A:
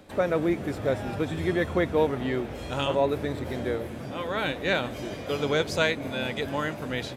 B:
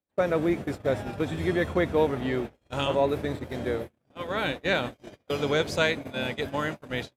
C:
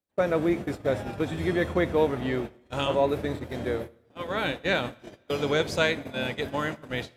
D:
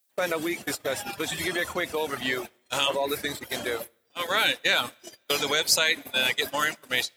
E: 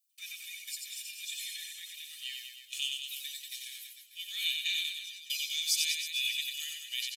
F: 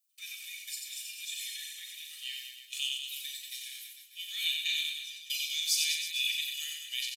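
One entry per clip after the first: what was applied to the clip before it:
gate -31 dBFS, range -41 dB
two-slope reverb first 0.59 s, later 2.2 s, from -19 dB, DRR 17 dB
reverb removal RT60 0.88 s; limiter -21.5 dBFS, peak gain reduction 10.5 dB; tilt +4.5 dB/oct; gain +6 dB
elliptic high-pass 2600 Hz, stop band 70 dB; comb 1.7 ms, depth 74%; reverse bouncing-ball echo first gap 90 ms, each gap 1.15×, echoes 5; gain -8.5 dB
doubler 39 ms -7 dB

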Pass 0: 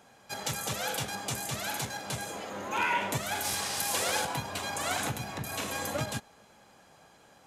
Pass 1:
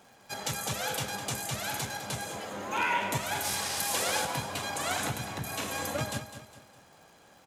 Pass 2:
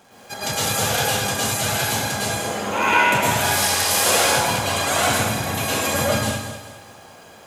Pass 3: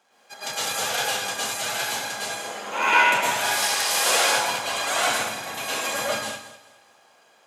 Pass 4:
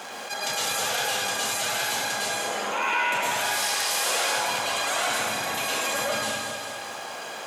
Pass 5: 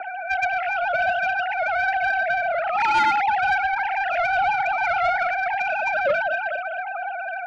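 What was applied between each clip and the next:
crackle 140/s -48 dBFS; on a send: feedback echo 0.205 s, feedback 40%, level -11.5 dB
plate-style reverb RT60 0.82 s, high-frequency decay 0.95×, pre-delay 95 ms, DRR -7 dB; gain +5 dB
soft clip -5 dBFS, distortion -29 dB; weighting filter A; upward expander 1.5:1, over -38 dBFS
fast leveller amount 70%; gain -8.5 dB
sine-wave speech; mistuned SSB -54 Hz 360–2500 Hz; soft clip -20.5 dBFS, distortion -16 dB; gain +6.5 dB

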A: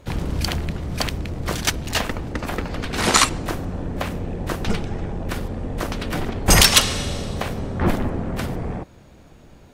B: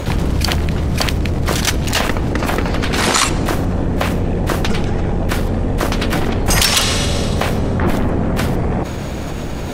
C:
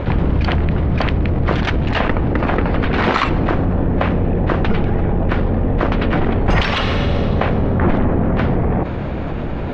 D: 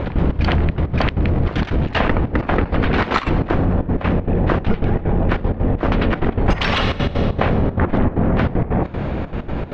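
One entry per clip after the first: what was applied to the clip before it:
fast leveller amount 70%; gain -2 dB
Bessel low-pass 2100 Hz, order 4; gain +1 dB
step gate "x.xx.xxxx." 193 bpm -12 dB

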